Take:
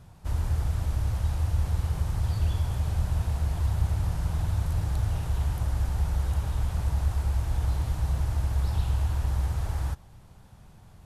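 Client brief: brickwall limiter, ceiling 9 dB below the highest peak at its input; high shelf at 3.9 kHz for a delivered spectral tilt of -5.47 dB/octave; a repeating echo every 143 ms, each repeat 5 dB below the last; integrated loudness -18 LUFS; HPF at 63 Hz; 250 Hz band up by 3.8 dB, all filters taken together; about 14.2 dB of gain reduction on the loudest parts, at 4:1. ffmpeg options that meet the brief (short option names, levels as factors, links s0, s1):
-af "highpass=63,equalizer=f=250:t=o:g=7,highshelf=f=3900:g=5.5,acompressor=threshold=0.00891:ratio=4,alimiter=level_in=5.31:limit=0.0631:level=0:latency=1,volume=0.188,aecho=1:1:143|286|429|572|715|858|1001:0.562|0.315|0.176|0.0988|0.0553|0.031|0.0173,volume=28.2"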